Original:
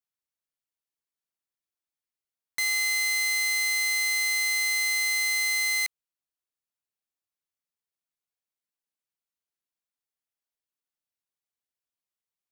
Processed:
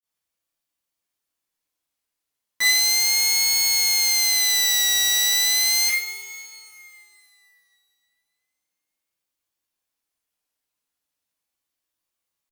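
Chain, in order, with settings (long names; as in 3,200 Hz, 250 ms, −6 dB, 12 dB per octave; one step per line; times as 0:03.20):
coupled-rooms reverb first 0.51 s, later 2.8 s, from −15 dB, DRR −8.5 dB
pitch vibrato 0.35 Hz 96 cents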